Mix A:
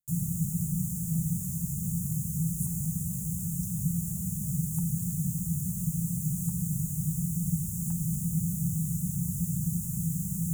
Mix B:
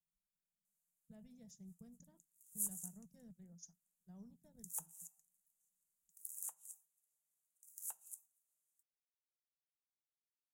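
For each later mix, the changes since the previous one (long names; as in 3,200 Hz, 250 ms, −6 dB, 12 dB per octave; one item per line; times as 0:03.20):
first sound: muted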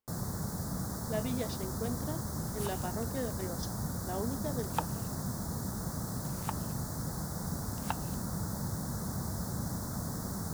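speech +6.5 dB
first sound: unmuted
master: remove drawn EQ curve 110 Hz 0 dB, 170 Hz +14 dB, 270 Hz −25 dB, 4,400 Hz −26 dB, 6,900 Hz +8 dB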